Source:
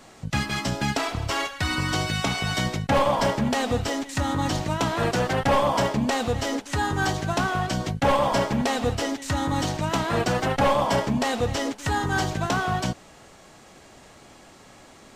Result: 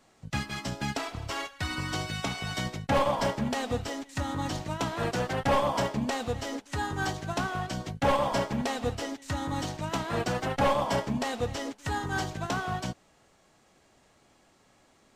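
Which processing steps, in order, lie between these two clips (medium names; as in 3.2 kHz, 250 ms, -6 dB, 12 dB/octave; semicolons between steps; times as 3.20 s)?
upward expansion 1.5:1, over -38 dBFS; trim -3.5 dB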